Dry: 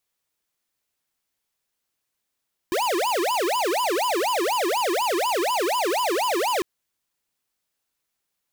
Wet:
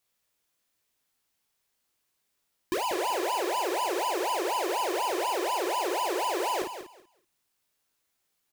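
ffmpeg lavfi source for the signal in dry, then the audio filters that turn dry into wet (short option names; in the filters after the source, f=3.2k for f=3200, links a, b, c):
-f lavfi -i "aevalsrc='0.0708*(2*lt(mod((672.5*t-337.5/(2*PI*4.1)*sin(2*PI*4.1*t)),1),0.5)-1)':d=3.9:s=44100"
-filter_complex "[0:a]asplit=2[a][b];[b]aecho=0:1:19|53:0.562|0.501[c];[a][c]amix=inputs=2:normalize=0,alimiter=level_in=1.5dB:limit=-24dB:level=0:latency=1:release=317,volume=-1.5dB,asplit=2[d][e];[e]aecho=0:1:191|382|573:0.316|0.0601|0.0114[f];[d][f]amix=inputs=2:normalize=0"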